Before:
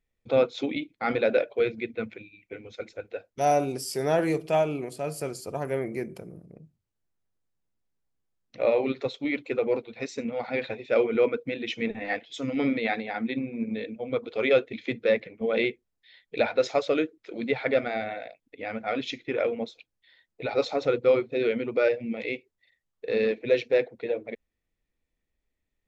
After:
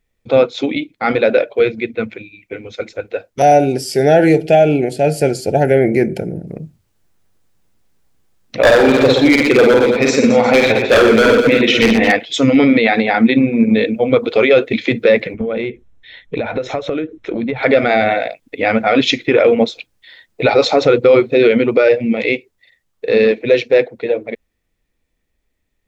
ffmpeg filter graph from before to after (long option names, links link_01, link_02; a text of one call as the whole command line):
ffmpeg -i in.wav -filter_complex "[0:a]asettb=1/sr,asplit=3[link_01][link_02][link_03];[link_01]atrim=end=3.424[link_04];[link_02]atrim=start=3.42:end=6.47,asetpts=PTS-STARTPTS,afade=type=in:duration=0.004:curve=qsin,afade=type=out:start_time=3.046:duration=0.004:curve=qsin,asuperstop=centerf=1100:order=20:qfactor=2.3,highshelf=frequency=6000:gain=-11.5[link_05];[link_03]atrim=start=6.466[link_06];[link_04][link_05]acrossfade=duration=0.004:curve1=hsin:curve2=qsin[link_07];[link_07][link_06]acrossfade=duration=0.004:curve1=qsin:curve2=hsin,asettb=1/sr,asplit=3[link_08][link_09][link_10];[link_08]atrim=end=8.634[link_11];[link_09]atrim=start=8.63:end=12.12,asetpts=PTS-STARTPTS,afade=type=in:duration=0.004:curve=qsin,afade=type=out:start_time=3.486:duration=0.004:curve=qsin,aeval=exprs='0.0944*(abs(mod(val(0)/0.0944+3,4)-2)-1)':channel_layout=same,aecho=1:1:50|120|218|355.2|547.3:0.631|0.398|0.251|0.158|0.1,atrim=end_sample=153909[link_12];[link_10]atrim=start=12.116[link_13];[link_11][link_12]acrossfade=duration=0.004:curve1=hsin:curve2=qsin[link_14];[link_14][link_13]acrossfade=duration=0.004:curve1=qsin:curve2=hsin,asettb=1/sr,asplit=3[link_15][link_16][link_17];[link_15]atrim=end=15.344[link_18];[link_16]atrim=start=15.34:end=17.63,asetpts=PTS-STARTPTS,afade=type=in:duration=0.004:curve=qsin,afade=type=out:start_time=2.286:duration=0.004:curve=qsin,aemphasis=mode=reproduction:type=bsi,acompressor=threshold=-35dB:ratio=16:attack=3.2:release=140:knee=1:detection=peak,asuperstop=centerf=4700:order=4:qfactor=5.1[link_19];[link_17]atrim=start=17.626[link_20];[link_18][link_19]acrossfade=duration=0.004:curve1=hsin:curve2=qsin[link_21];[link_21][link_20]acrossfade=duration=0.004:curve1=qsin:curve2=hsin,dynaudnorm=framelen=300:gausssize=31:maxgain=11.5dB,alimiter=level_in=12dB:limit=-1dB:release=50:level=0:latency=1,volume=-1dB" out.wav